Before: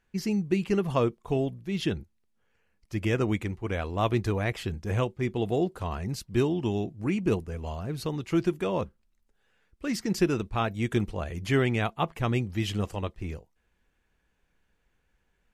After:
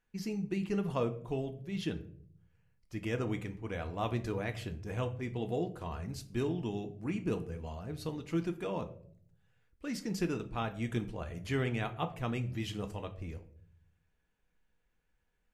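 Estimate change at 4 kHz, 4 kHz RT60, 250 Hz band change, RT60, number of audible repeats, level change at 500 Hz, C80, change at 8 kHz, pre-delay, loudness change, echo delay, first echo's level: -8.0 dB, 0.35 s, -7.5 dB, 0.60 s, none, -8.0 dB, 18.0 dB, -8.0 dB, 4 ms, -8.0 dB, none, none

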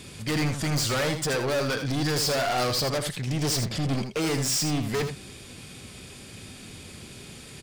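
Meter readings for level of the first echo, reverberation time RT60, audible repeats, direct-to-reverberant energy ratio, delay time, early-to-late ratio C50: -8.0 dB, none, 1, none, 80 ms, none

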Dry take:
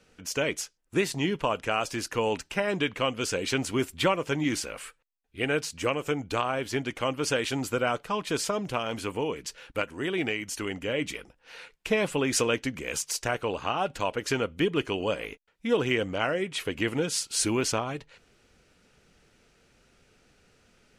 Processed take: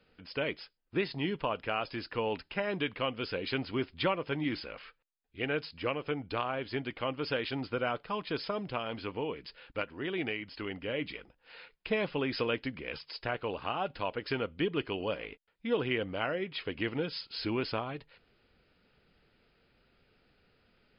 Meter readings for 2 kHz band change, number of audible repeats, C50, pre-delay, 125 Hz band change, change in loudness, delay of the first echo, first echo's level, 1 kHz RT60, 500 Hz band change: -5.5 dB, none, none, none, -5.5 dB, -6.0 dB, none, none, none, -5.5 dB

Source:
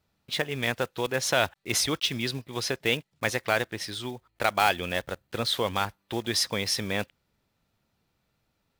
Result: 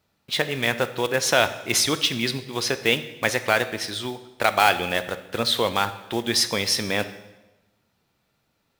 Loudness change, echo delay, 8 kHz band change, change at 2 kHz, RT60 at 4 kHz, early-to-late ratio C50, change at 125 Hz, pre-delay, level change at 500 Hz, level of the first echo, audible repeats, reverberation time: +5.0 dB, none, +5.5 dB, +5.5 dB, 0.95 s, 13.5 dB, +2.0 dB, 13 ms, +5.0 dB, none, none, 1.1 s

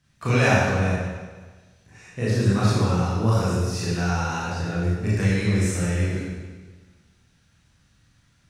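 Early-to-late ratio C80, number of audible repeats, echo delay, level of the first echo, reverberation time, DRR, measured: 0.0 dB, none, none, none, 1.4 s, -9.0 dB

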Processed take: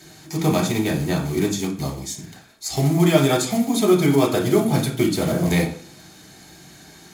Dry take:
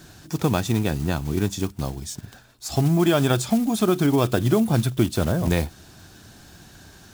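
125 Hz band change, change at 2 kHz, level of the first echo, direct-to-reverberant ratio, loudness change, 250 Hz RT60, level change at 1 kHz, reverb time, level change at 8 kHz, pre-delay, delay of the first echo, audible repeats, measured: +0.5 dB, +3.0 dB, none, 0.5 dB, +2.0 dB, 0.50 s, +2.0 dB, 0.45 s, +4.5 dB, 3 ms, none, none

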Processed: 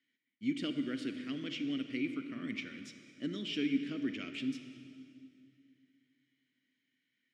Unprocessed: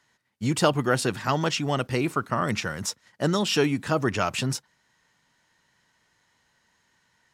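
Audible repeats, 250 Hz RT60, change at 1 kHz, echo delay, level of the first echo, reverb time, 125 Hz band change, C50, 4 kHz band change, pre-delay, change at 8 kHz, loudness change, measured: none, 2.9 s, -29.0 dB, none, none, 2.4 s, -21.5 dB, 8.5 dB, -12.0 dB, 34 ms, under -25 dB, -12.0 dB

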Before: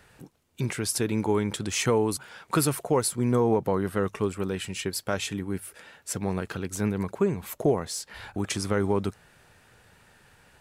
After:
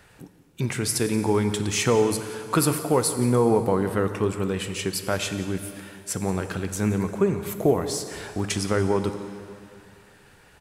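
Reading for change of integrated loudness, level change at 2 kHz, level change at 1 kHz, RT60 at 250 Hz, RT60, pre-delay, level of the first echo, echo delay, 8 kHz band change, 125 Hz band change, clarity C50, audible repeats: +3.5 dB, +3.0 dB, +3.0 dB, 2.4 s, 2.5 s, 10 ms, -18.0 dB, 0.178 s, +3.0 dB, +3.5 dB, 9.0 dB, 1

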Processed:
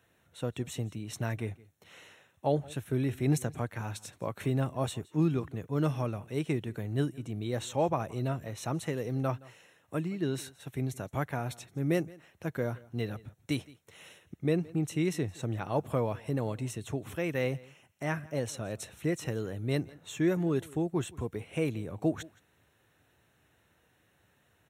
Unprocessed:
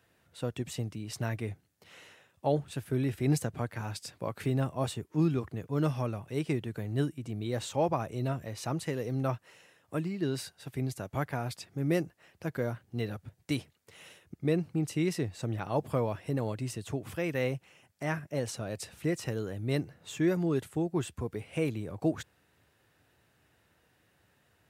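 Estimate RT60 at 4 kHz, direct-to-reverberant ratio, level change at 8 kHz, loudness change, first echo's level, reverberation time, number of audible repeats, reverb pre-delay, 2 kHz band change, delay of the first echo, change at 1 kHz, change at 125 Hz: none, none, 0.0 dB, 0.0 dB, -22.5 dB, none, 1, none, 0.0 dB, 0.169 s, 0.0 dB, 0.0 dB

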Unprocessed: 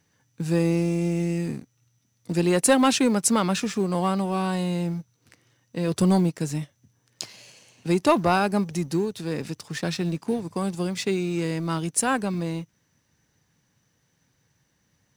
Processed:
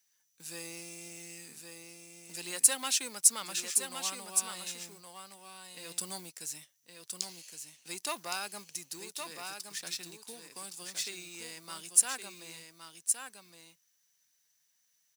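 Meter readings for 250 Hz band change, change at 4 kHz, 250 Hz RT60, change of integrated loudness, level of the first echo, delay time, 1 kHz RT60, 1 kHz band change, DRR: -28.0 dB, -4.0 dB, none, -7.5 dB, -6.0 dB, 1.116 s, none, -16.5 dB, none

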